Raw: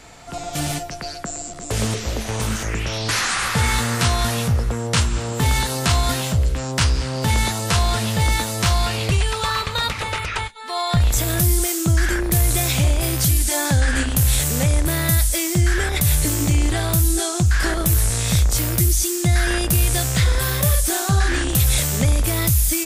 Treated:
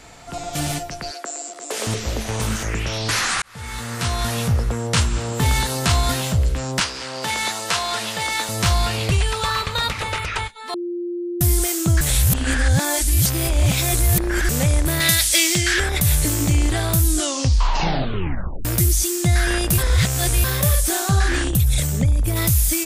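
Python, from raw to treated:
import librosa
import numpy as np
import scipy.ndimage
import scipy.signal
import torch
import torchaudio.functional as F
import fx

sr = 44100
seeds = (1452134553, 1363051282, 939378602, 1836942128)

y = fx.highpass(x, sr, hz=330.0, slope=24, at=(1.11, 1.87))
y = fx.weighting(y, sr, curve='A', at=(6.8, 8.49))
y = fx.weighting(y, sr, curve='D', at=(15.0, 15.8))
y = fx.envelope_sharpen(y, sr, power=1.5, at=(21.48, 22.35), fade=0.02)
y = fx.edit(y, sr, fx.fade_in_span(start_s=3.42, length_s=1.09),
    fx.bleep(start_s=10.74, length_s=0.67, hz=349.0, db=-23.5),
    fx.reverse_span(start_s=12.01, length_s=2.48),
    fx.tape_stop(start_s=17.06, length_s=1.59),
    fx.reverse_span(start_s=19.78, length_s=0.66), tone=tone)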